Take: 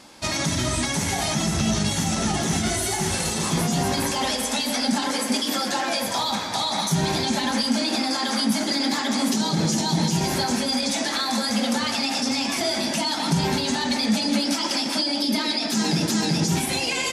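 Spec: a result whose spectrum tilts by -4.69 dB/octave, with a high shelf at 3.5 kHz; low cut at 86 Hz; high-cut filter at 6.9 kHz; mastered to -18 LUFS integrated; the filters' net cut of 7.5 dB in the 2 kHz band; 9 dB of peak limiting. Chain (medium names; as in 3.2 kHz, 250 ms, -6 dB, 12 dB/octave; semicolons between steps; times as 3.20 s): high-pass 86 Hz; low-pass 6.9 kHz; peaking EQ 2 kHz -7 dB; treble shelf 3.5 kHz -8 dB; trim +11 dB; peak limiter -9.5 dBFS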